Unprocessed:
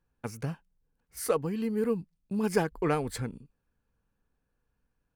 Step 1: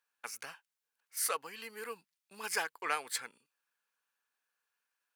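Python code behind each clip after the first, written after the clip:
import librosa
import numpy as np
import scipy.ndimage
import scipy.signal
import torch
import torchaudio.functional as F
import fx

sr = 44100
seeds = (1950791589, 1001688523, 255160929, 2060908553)

y = scipy.signal.sosfilt(scipy.signal.butter(2, 1400.0, 'highpass', fs=sr, output='sos'), x)
y = y * 10.0 ** (4.0 / 20.0)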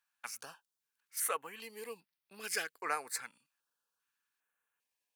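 y = fx.filter_held_notch(x, sr, hz=2.5, low_hz=410.0, high_hz=7300.0)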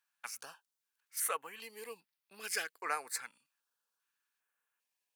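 y = fx.low_shelf(x, sr, hz=290.0, db=-7.5)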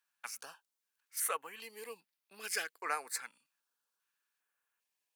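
y = scipy.signal.sosfilt(scipy.signal.butter(2, 150.0, 'highpass', fs=sr, output='sos'), x)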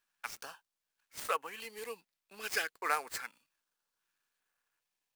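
y = fx.dead_time(x, sr, dead_ms=0.056)
y = y * 10.0 ** (4.0 / 20.0)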